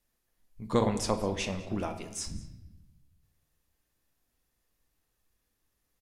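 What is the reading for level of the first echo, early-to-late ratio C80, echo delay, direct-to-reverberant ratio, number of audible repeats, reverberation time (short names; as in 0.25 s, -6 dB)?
-21.5 dB, 12.0 dB, 0.202 s, 7.0 dB, 1, 0.90 s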